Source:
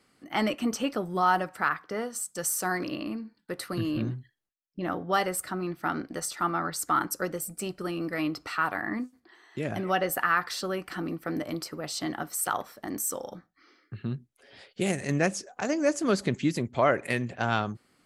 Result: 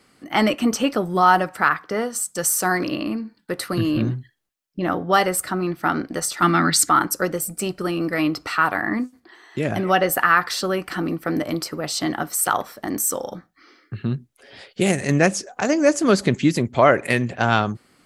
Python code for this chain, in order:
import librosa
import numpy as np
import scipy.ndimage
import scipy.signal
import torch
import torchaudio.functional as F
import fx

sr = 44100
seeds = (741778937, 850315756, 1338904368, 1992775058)

y = fx.graphic_eq(x, sr, hz=(125, 250, 500, 1000, 2000, 4000, 8000), db=(4, 11, -5, -3, 8, 9, 6), at=(6.42, 6.89))
y = y * librosa.db_to_amplitude(8.5)